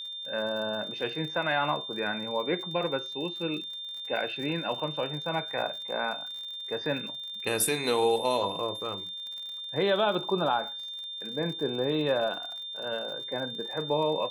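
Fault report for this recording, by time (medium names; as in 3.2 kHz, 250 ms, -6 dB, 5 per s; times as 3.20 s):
crackle 62 per s -38 dBFS
whine 3.6 kHz -36 dBFS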